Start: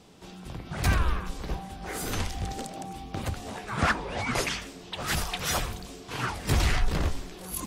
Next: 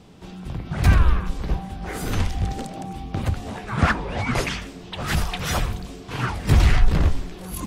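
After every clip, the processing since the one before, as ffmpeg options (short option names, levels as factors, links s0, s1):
-af "bass=f=250:g=6,treble=f=4000:g=-5,volume=1.5"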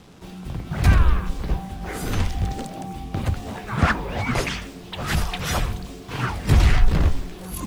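-af "acrusher=bits=7:mix=0:aa=0.5"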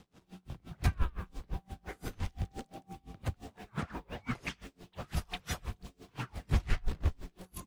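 -af "aeval=exprs='val(0)*pow(10,-30*(0.5-0.5*cos(2*PI*5.8*n/s))/20)':c=same,volume=0.355"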